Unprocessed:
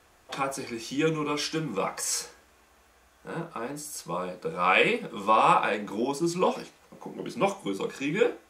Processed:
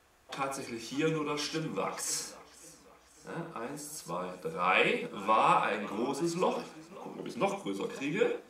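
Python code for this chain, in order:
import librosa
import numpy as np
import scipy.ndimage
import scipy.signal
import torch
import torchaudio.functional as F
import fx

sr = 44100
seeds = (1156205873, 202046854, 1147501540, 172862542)

y = x + 10.0 ** (-9.5 / 20.0) * np.pad(x, (int(95 * sr / 1000.0), 0))[:len(x)]
y = fx.echo_warbled(y, sr, ms=540, feedback_pct=48, rate_hz=2.8, cents=130, wet_db=-19.5)
y = y * librosa.db_to_amplitude(-5.0)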